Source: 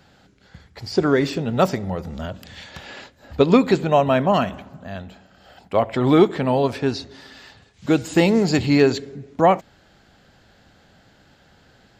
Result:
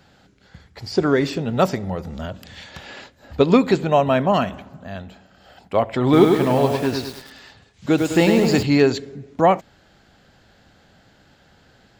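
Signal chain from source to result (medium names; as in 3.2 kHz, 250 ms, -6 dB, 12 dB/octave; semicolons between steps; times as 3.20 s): 6.03–8.63 s: bit-crushed delay 102 ms, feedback 55%, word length 6-bit, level -4 dB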